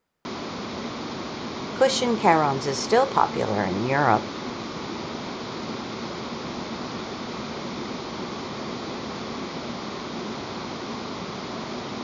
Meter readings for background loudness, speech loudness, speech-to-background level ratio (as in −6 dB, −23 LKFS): −32.5 LKFS, −22.5 LKFS, 10.0 dB